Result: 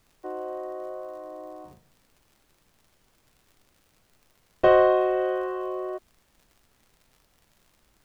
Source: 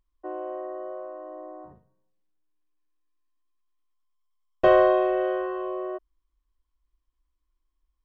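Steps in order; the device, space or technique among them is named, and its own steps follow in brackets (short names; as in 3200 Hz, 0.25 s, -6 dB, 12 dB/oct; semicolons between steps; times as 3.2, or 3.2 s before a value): vinyl LP (crackle; pink noise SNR 37 dB)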